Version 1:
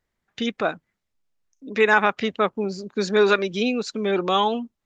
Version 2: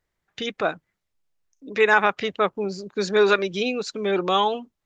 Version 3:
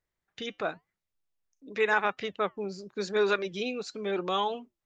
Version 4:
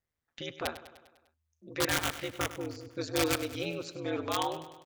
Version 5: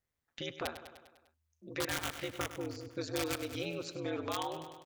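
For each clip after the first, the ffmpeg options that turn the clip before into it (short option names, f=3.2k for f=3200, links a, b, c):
-af "equalizer=f=230:w=7.4:g=-11"
-af "flanger=delay=1.9:depth=2.9:regen=-89:speed=0.92:shape=sinusoidal,volume=-3.5dB"
-af "aeval=exprs='(mod(8.91*val(0)+1,2)-1)/8.91':c=same,aeval=exprs='val(0)*sin(2*PI*79*n/s)':c=same,aecho=1:1:100|200|300|400|500|600:0.2|0.116|0.0671|0.0389|0.0226|0.0131"
-af "acompressor=threshold=-34dB:ratio=3"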